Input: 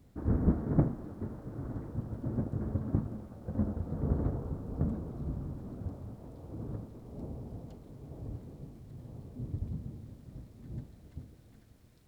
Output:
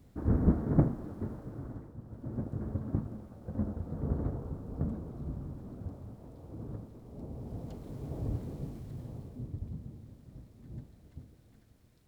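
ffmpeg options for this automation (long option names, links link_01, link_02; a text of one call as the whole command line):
ffmpeg -i in.wav -af "volume=18.5dB,afade=type=out:start_time=1.29:duration=0.69:silence=0.266073,afade=type=in:start_time=1.98:duration=0.52:silence=0.398107,afade=type=in:start_time=7.28:duration=0.68:silence=0.354813,afade=type=out:start_time=8.72:duration=0.79:silence=0.316228" out.wav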